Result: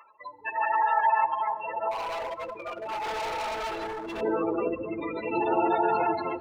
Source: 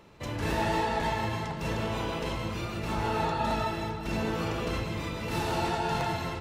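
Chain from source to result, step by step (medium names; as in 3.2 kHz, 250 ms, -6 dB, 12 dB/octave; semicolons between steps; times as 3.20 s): bass shelf 76 Hz +9.5 dB; spectral gate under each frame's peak -15 dB strong; high-pass sweep 1.2 kHz -> 330 Hz, 0.57–4.51 s; 1.91–4.21 s: overload inside the chain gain 35 dB; peaking EQ 190 Hz -9.5 dB 2.3 oct; plate-style reverb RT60 3 s, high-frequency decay 0.5×, DRR 18.5 dB; trim +6.5 dB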